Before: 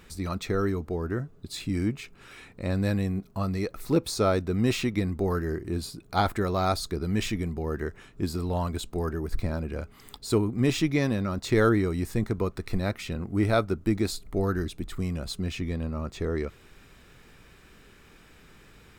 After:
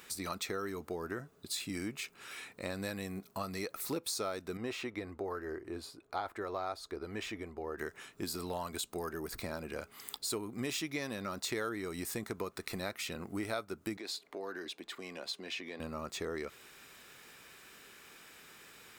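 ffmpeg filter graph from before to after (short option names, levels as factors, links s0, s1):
-filter_complex "[0:a]asettb=1/sr,asplit=3[s0][s1][s2];[s0]atrim=end=4.574[s3];[s1]atrim=start=4.57:end=7.78,asetpts=PTS-STARTPTS,afade=t=in:d=0.004:c=qsin,afade=t=out:st=3.206:d=0.004:c=qsin,lowpass=f=1100:p=1,equalizer=f=170:t=o:w=1:g=-12[s4];[s2]atrim=start=7.776[s5];[s3][s4]acrossfade=d=0.004:c1=hsin:c2=qsin[s6];[s6][s5]acrossfade=d=0.004:c1=qsin:c2=hsin,asettb=1/sr,asplit=3[s7][s8][s9];[s7]atrim=end=13.974[s10];[s8]atrim=start=13.97:end=15.8,asetpts=PTS-STARTPTS,afade=t=in:d=0.004:c=qsin,afade=t=out:st=1.826:d=0.004:c=qsin,acrossover=split=250 5100:gain=0.0708 1 0.158[s11][s12][s13];[s11][s12][s13]amix=inputs=3:normalize=0,bandreject=f=1300:w=7.3,acompressor=threshold=0.0178:ratio=3:attack=3.2:release=140:knee=1:detection=peak[s14];[s9]atrim=start=15.796[s15];[s10][s14]acrossfade=d=0.004:c1=hsin:c2=qsin[s16];[s16][s15]acrossfade=d=0.004:c1=qsin:c2=hsin,highpass=f=650:p=1,highshelf=f=6800:g=8,acompressor=threshold=0.0158:ratio=4,volume=1.12"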